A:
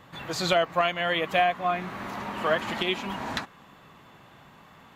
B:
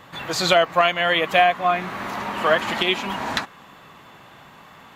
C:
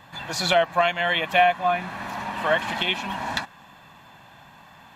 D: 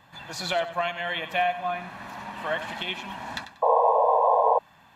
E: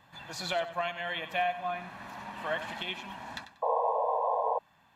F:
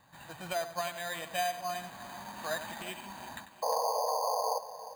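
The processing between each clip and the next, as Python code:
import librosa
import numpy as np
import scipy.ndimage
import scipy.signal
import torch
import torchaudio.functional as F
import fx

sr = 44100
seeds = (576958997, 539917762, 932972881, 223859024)

y1 = fx.low_shelf(x, sr, hz=350.0, db=-5.5)
y1 = y1 * librosa.db_to_amplitude(7.5)
y2 = y1 + 0.53 * np.pad(y1, (int(1.2 * sr / 1000.0), 0))[:len(y1)]
y2 = y2 * librosa.db_to_amplitude(-4.0)
y3 = fx.echo_feedback(y2, sr, ms=94, feedback_pct=28, wet_db=-12.5)
y3 = fx.spec_paint(y3, sr, seeds[0], shape='noise', start_s=3.62, length_s=0.97, low_hz=440.0, high_hz=1100.0, level_db=-13.0)
y3 = y3 * librosa.db_to_amplitude(-7.0)
y4 = fx.rider(y3, sr, range_db=4, speed_s=2.0)
y4 = y4 * librosa.db_to_amplitude(-8.0)
y5 = fx.echo_feedback(y4, sr, ms=353, feedback_pct=40, wet_db=-14.0)
y5 = np.repeat(scipy.signal.resample_poly(y5, 1, 8), 8)[:len(y5)]
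y5 = y5 * librosa.db_to_amplitude(-2.5)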